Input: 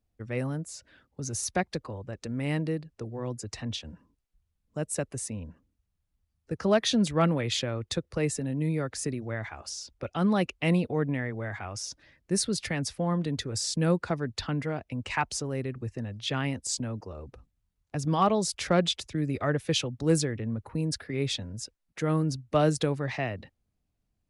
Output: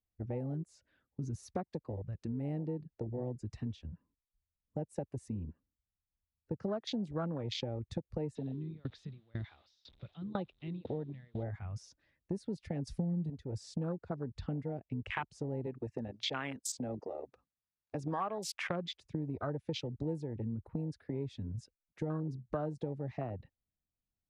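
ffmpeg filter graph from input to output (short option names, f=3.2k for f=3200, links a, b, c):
-filter_complex "[0:a]asettb=1/sr,asplit=3[a][b][c];[a]atrim=end=8.354[d];[b]atrim=start=8.35:end=11.43,asetpts=PTS-STARTPTS,afade=t=in:d=0.004:c=qsin,afade=t=out:st=3.076:d=0.004:c=qsin,aeval=exprs='val(0)+0.5*0.00841*sgn(val(0))':c=same,lowpass=f=3.7k:t=q:w=9.1,aeval=exprs='val(0)*pow(10,-23*if(lt(mod(2*n/s,1),2*abs(2)/1000),1-mod(2*n/s,1)/(2*abs(2)/1000),(mod(2*n/s,1)-2*abs(2)/1000)/(1-2*abs(2)/1000))/20)':c=same[e];[c]atrim=start=11.426[f];[d][e]acrossfade=d=0.004:c1=hsin:c2=qsin[g];[g][f]acrossfade=d=0.004:c1=qsin:c2=hsin,asettb=1/sr,asplit=3[h][i][j];[h]atrim=end=12.874[k];[i]atrim=start=12.87:end=13.3,asetpts=PTS-STARTPTS,afade=t=in:d=0.004:c=qsin,afade=t=out:st=0.426:d=0.004:c=qsin,bass=f=250:g=12,treble=f=4k:g=13,aecho=1:1:5.3:0.72,atrim=end_sample=18963[l];[j]atrim=start=13.296[m];[k][l]acrossfade=d=0.004:c1=hsin:c2=qsin[n];[n][m]acrossfade=d=0.004:c1=qsin:c2=hsin,asettb=1/sr,asplit=3[o][p][q];[o]atrim=end=15.664[r];[p]atrim=start=15.66:end=18.71,asetpts=PTS-STARTPTS,afade=t=in:d=0.004:c=qsin,afade=t=out:st=3.046:d=0.004:c=qsin,highpass=f=660:p=1,bandreject=f=3k:w=19,acontrast=89[s];[q]atrim=start=18.706[t];[r][s]acrossfade=d=0.004:c1=hsin:c2=qsin[u];[u][t]acrossfade=d=0.004:c1=qsin:c2=hsin,afwtdn=0.0316,lowpass=f=3.5k:p=1,acompressor=threshold=-36dB:ratio=6,volume=1.5dB"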